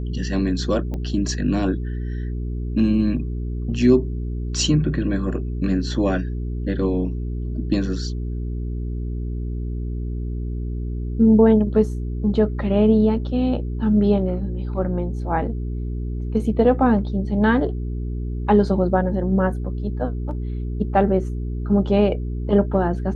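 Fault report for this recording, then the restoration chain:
mains hum 60 Hz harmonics 7 −26 dBFS
0:00.94: click −19 dBFS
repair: click removal
hum removal 60 Hz, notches 7

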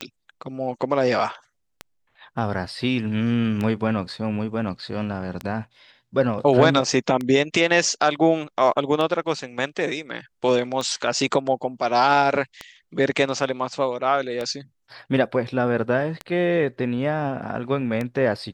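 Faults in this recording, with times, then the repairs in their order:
scratch tick 33 1/3 rpm −14 dBFS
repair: click removal

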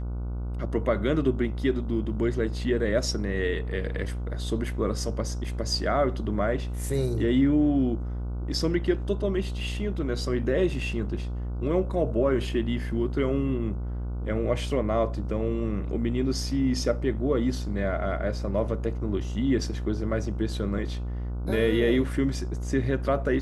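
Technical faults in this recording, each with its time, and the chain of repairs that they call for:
mains buzz 60 Hz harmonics 25 −31 dBFS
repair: hum removal 60 Hz, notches 25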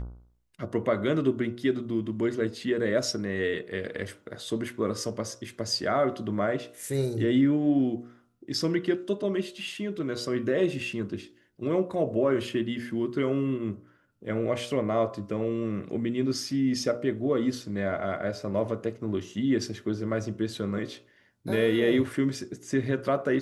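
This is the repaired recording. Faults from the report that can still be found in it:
none of them is left

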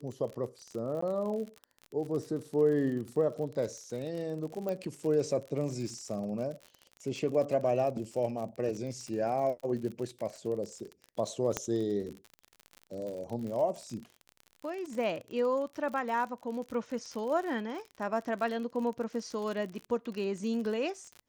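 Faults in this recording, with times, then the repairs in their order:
surface crackle 50 per second −37 dBFS
0:01.01–0:01.02: drop-out 14 ms
0:04.69: click −23 dBFS
0:11.57: click −15 dBFS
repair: click removal
repair the gap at 0:01.01, 14 ms

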